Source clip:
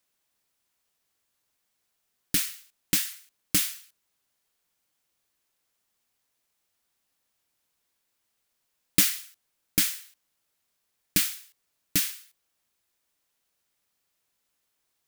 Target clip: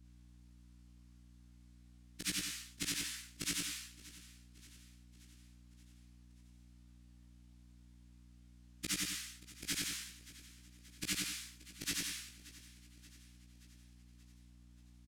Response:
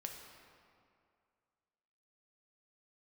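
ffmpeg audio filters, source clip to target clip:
-filter_complex "[0:a]afftfilt=real='re':imag='-im':win_size=8192:overlap=0.75,lowpass=8600,equalizer=frequency=150:width=0.8:gain=-2.5,asplit=2[link_01][link_02];[link_02]alimiter=level_in=1.5dB:limit=-24dB:level=0:latency=1:release=133,volume=-1.5dB,volume=0dB[link_03];[link_01][link_03]amix=inputs=2:normalize=0,acompressor=threshold=-36dB:ratio=12,flanger=delay=16:depth=2.3:speed=0.45,aeval=exprs='val(0)+0.000708*(sin(2*PI*60*n/s)+sin(2*PI*2*60*n/s)/2+sin(2*PI*3*60*n/s)/3+sin(2*PI*4*60*n/s)/4+sin(2*PI*5*60*n/s)/5)':channel_layout=same,aecho=1:1:579|1158|1737|2316|2895:0.112|0.0628|0.0352|0.0197|0.011,volume=4.5dB"

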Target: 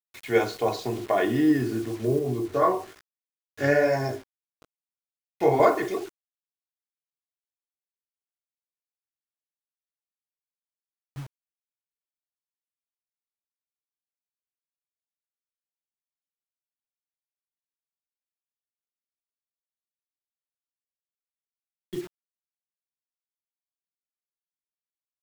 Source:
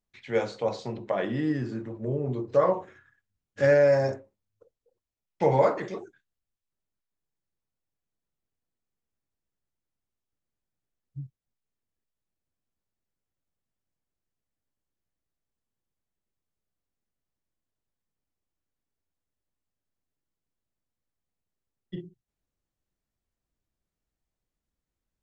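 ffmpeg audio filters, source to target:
ffmpeg -i in.wav -filter_complex "[0:a]aecho=1:1:2.8:0.7,acrusher=bits=7:mix=0:aa=0.000001,asettb=1/sr,asplit=3[link_01][link_02][link_03];[link_01]atrim=end=2.194[link_04];[link_02]atrim=start=2.19:end=5.6,asetpts=PTS-STARTPTS,afade=type=in:duration=0.004:curve=qsin,afade=type=out:start_time=3.406:duration=0.004:curve=qsin,flanger=delay=15.5:depth=7:speed=1.1[link_05];[link_03]atrim=start=5.596[link_06];[link_04][link_05]acrossfade=duration=0.004:curve1=hsin:curve2=qsin[link_07];[link_07][link_06]acrossfade=duration=0.004:curve1=qsin:curve2=hsin,volume=4dB" out.wav

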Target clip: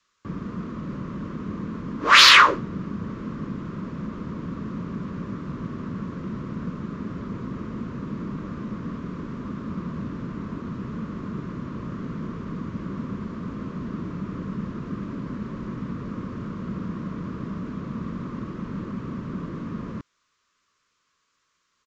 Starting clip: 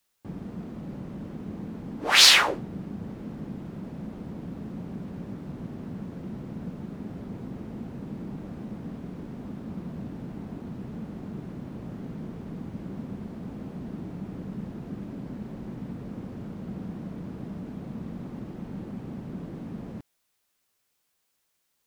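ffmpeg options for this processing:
ffmpeg -i in.wav -filter_complex "[0:a]acrossover=split=370|780|4600[link_01][link_02][link_03][link_04];[link_03]highpass=frequency=1100:width_type=q:width=4.4[link_05];[link_04]alimiter=limit=-19.5dB:level=0:latency=1:release=222[link_06];[link_01][link_02][link_05][link_06]amix=inputs=4:normalize=0,aresample=16000,aresample=44100,acontrast=50,volume=-1dB" out.wav

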